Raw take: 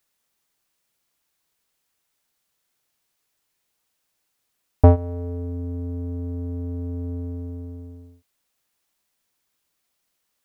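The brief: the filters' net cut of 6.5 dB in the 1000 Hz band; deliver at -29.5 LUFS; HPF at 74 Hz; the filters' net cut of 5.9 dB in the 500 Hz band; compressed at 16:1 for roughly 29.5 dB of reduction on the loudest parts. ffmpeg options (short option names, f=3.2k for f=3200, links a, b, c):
-af "highpass=74,equalizer=f=500:t=o:g=-5.5,equalizer=f=1k:t=o:g=-6.5,acompressor=threshold=-38dB:ratio=16,volume=15dB"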